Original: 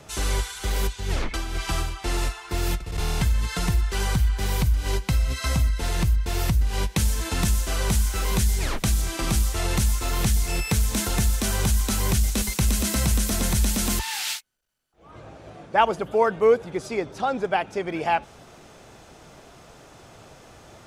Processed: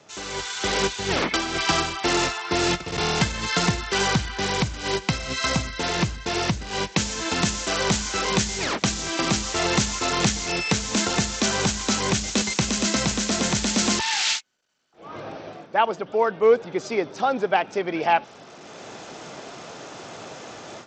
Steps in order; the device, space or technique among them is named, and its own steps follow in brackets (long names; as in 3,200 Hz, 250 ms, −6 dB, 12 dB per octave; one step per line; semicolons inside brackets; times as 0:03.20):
Bluetooth headset (high-pass filter 190 Hz 12 dB per octave; automatic gain control gain up to 15 dB; downsampling to 16,000 Hz; level −5 dB; SBC 64 kbit/s 32,000 Hz)